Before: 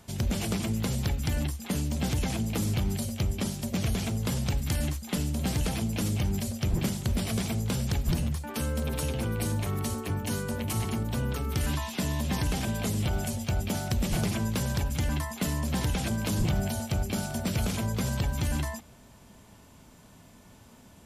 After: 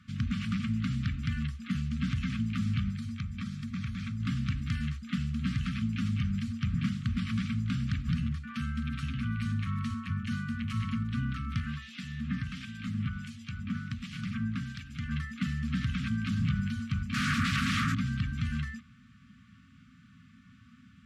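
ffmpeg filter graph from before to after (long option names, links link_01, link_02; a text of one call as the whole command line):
ffmpeg -i in.wav -filter_complex "[0:a]asettb=1/sr,asplit=3[link_01][link_02][link_03];[link_01]atrim=end=2.904[link_04];[link_02]atrim=start=2.9:end=4.2,asetpts=PTS-STARTPTS,afade=type=in:duration=0.004:curve=qsin,afade=type=out:start_time=1.296:duration=0.004:curve=qsin,acompressor=threshold=-29dB:ratio=4:attack=3.2:release=140:knee=1:detection=peak,equalizer=frequency=310:width_type=o:width=0.48:gain=-8,bandreject=frequency=2900:width=9.2[link_05];[link_03]atrim=start=4.196[link_06];[link_04][link_05]acrossfade=duration=0.004:curve1=hsin:curve2=qsin[link_07];[link_07][link_06]acrossfade=duration=0.004:curve1=qsin:curve2=hsin,asettb=1/sr,asplit=3[link_08][link_09][link_10];[link_08]atrim=end=11.604[link_11];[link_09]atrim=start=11.6:end=15.11,asetpts=PTS-STARTPTS,afade=type=in:duration=0.004:curve=qsin,afade=type=out:start_time=3.506:duration=0.004:curve=qsin,lowshelf=frequency=68:gain=-8,acrossover=split=2100[link_12][link_13];[link_12]aeval=exprs='val(0)*(1-0.7/2+0.7/2*cos(2*PI*1.4*n/s))':channel_layout=same[link_14];[link_13]aeval=exprs='val(0)*(1-0.7/2-0.7/2*cos(2*PI*1.4*n/s))':channel_layout=same[link_15];[link_14][link_15]amix=inputs=2:normalize=0[link_16];[link_10]atrim=start=15.106[link_17];[link_11][link_16]acrossfade=duration=0.004:curve1=hsin:curve2=qsin[link_18];[link_18][link_17]acrossfade=duration=0.004:curve1=qsin:curve2=hsin,asettb=1/sr,asplit=3[link_19][link_20][link_21];[link_19]atrim=end=17.144[link_22];[link_20]atrim=start=17.14:end=17.95,asetpts=PTS-STARTPTS,afade=type=in:duration=0.004:curve=qsin,afade=type=out:start_time=0.806:duration=0.004:curve=qsin,highshelf=frequency=11000:gain=11.5,acompressor=threshold=-30dB:ratio=4:attack=3.2:release=140:knee=1:detection=peak,aeval=exprs='0.106*sin(PI/2*7.08*val(0)/0.106)':channel_layout=same[link_23];[link_21]atrim=start=17.946[link_24];[link_22][link_23]acrossfade=duration=0.004:curve1=hsin:curve2=qsin[link_25];[link_25][link_24]acrossfade=duration=0.004:curve1=qsin:curve2=hsin,highpass=86,afftfilt=real='re*(1-between(b*sr/4096,270,1100))':imag='im*(1-between(b*sr/4096,270,1100))':win_size=4096:overlap=0.75,lowpass=2700" out.wav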